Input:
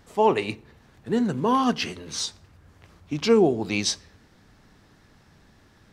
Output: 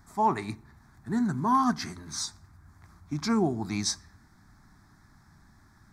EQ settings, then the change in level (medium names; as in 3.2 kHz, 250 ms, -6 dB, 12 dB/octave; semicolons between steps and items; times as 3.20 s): static phaser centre 1.2 kHz, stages 4; 0.0 dB